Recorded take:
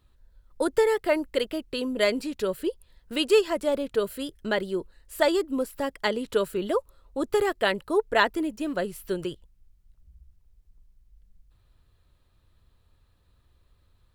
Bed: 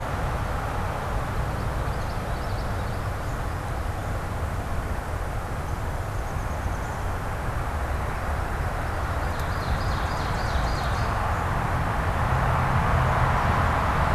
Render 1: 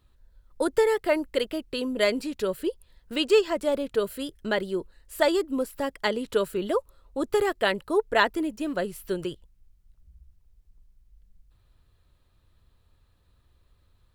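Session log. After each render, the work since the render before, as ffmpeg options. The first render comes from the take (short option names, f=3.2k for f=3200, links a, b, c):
-filter_complex "[0:a]asettb=1/sr,asplit=3[a][b][c];[a]atrim=end=3.144[d];[b]atrim=start=3.14:end=3.61,asetpts=PTS-STARTPTS,afade=t=in:d=0.004:c=qsin,afade=t=out:st=0.466:d=0.004:c=qsin,equalizer=f=11k:t=o:w=0.35:g=-11.5[e];[c]atrim=start=3.606[f];[d][e]acrossfade=d=0.004:c1=hsin:c2=qsin[g];[g][f]acrossfade=d=0.004:c1=qsin:c2=hsin"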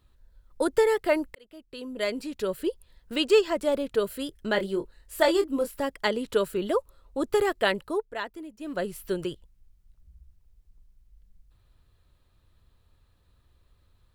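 -filter_complex "[0:a]asettb=1/sr,asplit=3[a][b][c];[a]atrim=end=4.524[d];[b]atrim=start=4.52:end=5.79,asetpts=PTS-STARTPTS,afade=t=in:d=0.004:c=qsin,afade=t=out:st=1.266:d=0.004:c=qsin,asplit=2[e][f];[f]adelay=25,volume=-7.5dB[g];[e][g]amix=inputs=2:normalize=0,atrim=end_sample=56007[h];[c]atrim=start=5.786[i];[d][h]acrossfade=d=0.004:c1=hsin:c2=qsin[j];[j][i]acrossfade=d=0.004:c1=qsin:c2=hsin,asplit=4[k][l][m][n];[k]atrim=end=1.35,asetpts=PTS-STARTPTS,afade=t=out:st=1.346:d=0.004:c=hsin[o];[l]atrim=start=1.35:end=8.08,asetpts=PTS-STARTPTS,afade=t=in:d=1.33,afade=t=out:st=6.34:d=0.39:c=qsin:silence=0.237137[p];[m]atrim=start=8.08:end=8.58,asetpts=PTS-STARTPTS,volume=-12.5dB[q];[n]atrim=start=8.58,asetpts=PTS-STARTPTS,afade=t=in:d=0.39:c=qsin:silence=0.237137[r];[o][p][q][r]concat=n=4:v=0:a=1"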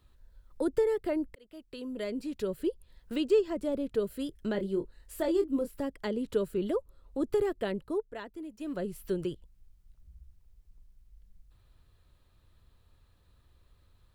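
-filter_complex "[0:a]acrossover=split=430[a][b];[b]acompressor=threshold=-50dB:ratio=2[c];[a][c]amix=inputs=2:normalize=0"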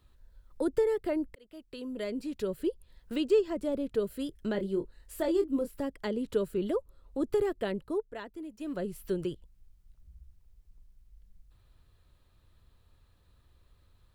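-af anull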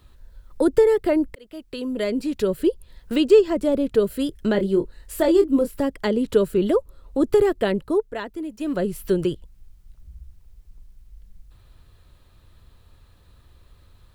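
-af "volume=11dB"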